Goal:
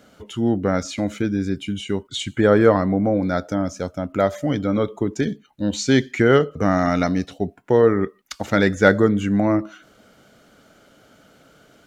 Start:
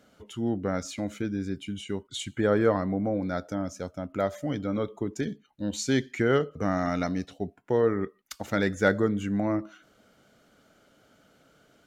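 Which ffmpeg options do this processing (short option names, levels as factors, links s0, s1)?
-filter_complex "[0:a]acrossover=split=7300[s0][s1];[s1]acompressor=threshold=0.00126:ratio=4:attack=1:release=60[s2];[s0][s2]amix=inputs=2:normalize=0,volume=2.66"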